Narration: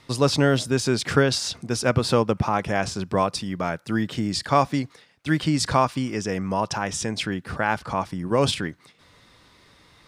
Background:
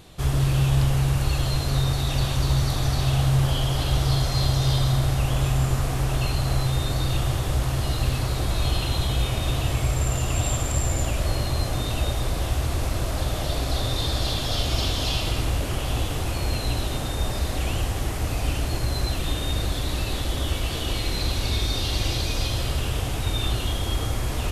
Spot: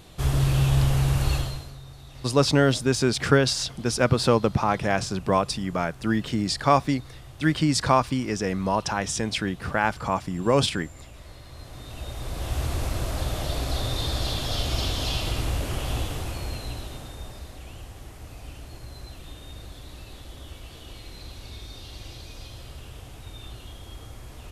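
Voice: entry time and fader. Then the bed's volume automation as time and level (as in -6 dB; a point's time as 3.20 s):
2.15 s, 0.0 dB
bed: 1.35 s -0.5 dB
1.78 s -21 dB
11.43 s -21 dB
12.61 s -2.5 dB
15.94 s -2.5 dB
17.60 s -16 dB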